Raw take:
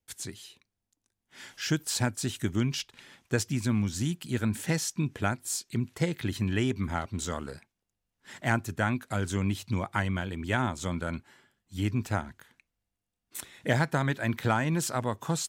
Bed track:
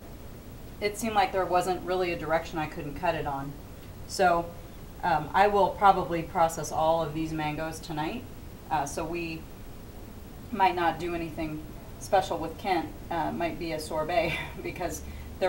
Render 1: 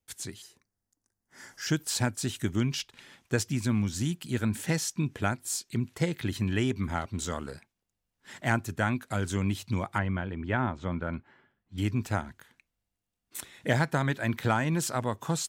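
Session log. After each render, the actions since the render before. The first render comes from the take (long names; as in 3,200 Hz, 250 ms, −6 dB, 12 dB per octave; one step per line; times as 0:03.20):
0:00.42–0:01.67: flat-topped bell 3,100 Hz −12 dB 1 octave
0:09.98–0:11.78: low-pass filter 2,100 Hz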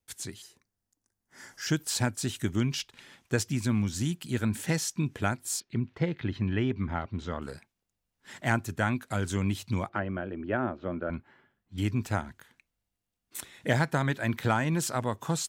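0:05.60–0:07.42: high-frequency loss of the air 260 metres
0:09.89–0:11.10: loudspeaker in its box 130–3,800 Hz, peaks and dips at 150 Hz −10 dB, 350 Hz +5 dB, 600 Hz +6 dB, 940 Hz −8 dB, 2,100 Hz −8 dB, 3,500 Hz −9 dB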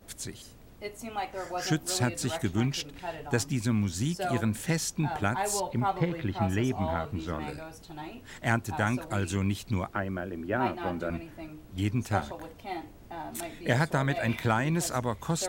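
mix in bed track −9.5 dB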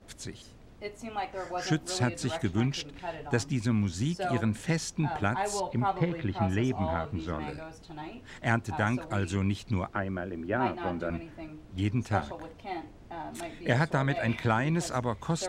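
high-frequency loss of the air 58 metres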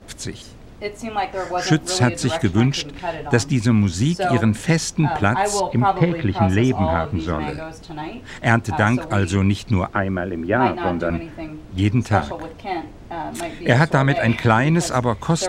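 level +11 dB
brickwall limiter −1 dBFS, peak gain reduction 1 dB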